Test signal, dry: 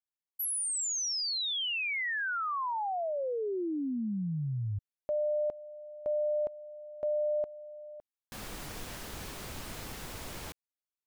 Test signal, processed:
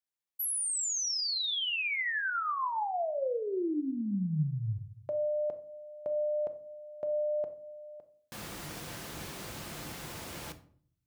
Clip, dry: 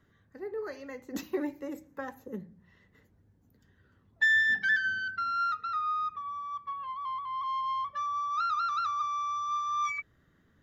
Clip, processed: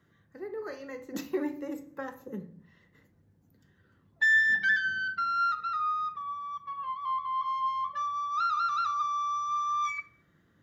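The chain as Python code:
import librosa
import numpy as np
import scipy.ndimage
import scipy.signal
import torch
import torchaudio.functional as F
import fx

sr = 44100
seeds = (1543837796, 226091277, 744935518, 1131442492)

y = scipy.signal.sosfilt(scipy.signal.butter(2, 70.0, 'highpass', fs=sr, output='sos'), x)
y = fx.room_shoebox(y, sr, seeds[0], volume_m3=630.0, walls='furnished', distance_m=0.81)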